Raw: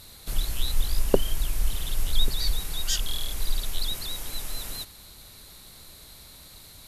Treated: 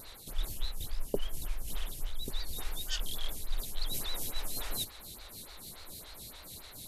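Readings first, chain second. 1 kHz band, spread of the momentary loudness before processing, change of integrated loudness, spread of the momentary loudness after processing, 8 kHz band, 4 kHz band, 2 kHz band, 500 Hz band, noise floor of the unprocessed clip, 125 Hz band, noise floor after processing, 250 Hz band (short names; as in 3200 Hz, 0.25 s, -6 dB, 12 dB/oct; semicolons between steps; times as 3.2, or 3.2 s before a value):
-6.0 dB, 19 LU, -9.5 dB, 10 LU, -7.0 dB, -8.5 dB, -6.0 dB, -11.0 dB, -49 dBFS, -10.0 dB, -51 dBFS, -9.5 dB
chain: reverse; compressor 6:1, threshold -30 dBFS, peak gain reduction 17 dB; reverse; vibrato 6.4 Hz 60 cents; photocell phaser 3.5 Hz; gain +4 dB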